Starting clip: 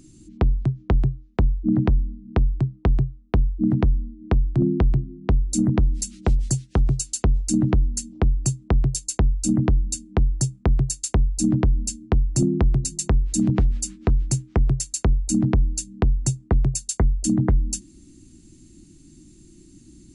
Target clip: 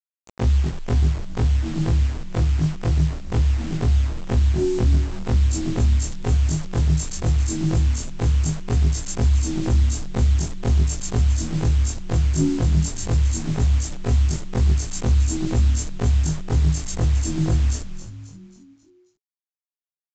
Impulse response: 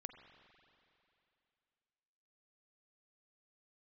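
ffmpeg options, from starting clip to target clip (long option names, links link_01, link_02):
-filter_complex "[0:a]afftfilt=real='re':imag='-im':win_size=2048:overlap=0.75,adynamicequalizer=threshold=0.00282:dfrequency=2400:dqfactor=0.8:tfrequency=2400:tqfactor=0.8:attack=5:release=100:ratio=0.375:range=2:mode=cutabove:tftype=bell,asplit=2[link_01][link_02];[link_02]asoftclip=type=hard:threshold=-27.5dB,volume=-12dB[link_03];[link_01][link_03]amix=inputs=2:normalize=0,afreqshift=27,flanger=delay=16:depth=2:speed=0.2,bandreject=frequency=64.57:width_type=h:width=4,bandreject=frequency=129.14:width_type=h:width=4,bandreject=frequency=193.71:width_type=h:width=4,bandreject=frequency=258.28:width_type=h:width=4,bandreject=frequency=322.85:width_type=h:width=4,bandreject=frequency=387.42:width_type=h:width=4,bandreject=frequency=451.99:width_type=h:width=4,bandreject=frequency=516.56:width_type=h:width=4,bandreject=frequency=581.13:width_type=h:width=4,bandreject=frequency=645.7:width_type=h:width=4,bandreject=frequency=710.27:width_type=h:width=4,bandreject=frequency=774.84:width_type=h:width=4,bandreject=frequency=839.41:width_type=h:width=4,bandreject=frequency=903.98:width_type=h:width=4,bandreject=frequency=968.55:width_type=h:width=4,bandreject=frequency=1033.12:width_type=h:width=4,bandreject=frequency=1097.69:width_type=h:width=4,bandreject=frequency=1162.26:width_type=h:width=4,bandreject=frequency=1226.83:width_type=h:width=4,bandreject=frequency=1291.4:width_type=h:width=4,bandreject=frequency=1355.97:width_type=h:width=4,bandreject=frequency=1420.54:width_type=h:width=4,aresample=16000,acrusher=bits=6:mix=0:aa=0.000001,aresample=44100,asplit=6[link_04][link_05][link_06][link_07][link_08][link_09];[link_05]adelay=269,afreqshift=-86,volume=-12.5dB[link_10];[link_06]adelay=538,afreqshift=-172,volume=-18.9dB[link_11];[link_07]adelay=807,afreqshift=-258,volume=-25.3dB[link_12];[link_08]adelay=1076,afreqshift=-344,volume=-31.6dB[link_13];[link_09]adelay=1345,afreqshift=-430,volume=-38dB[link_14];[link_04][link_10][link_11][link_12][link_13][link_14]amix=inputs=6:normalize=0,volume=4.5dB"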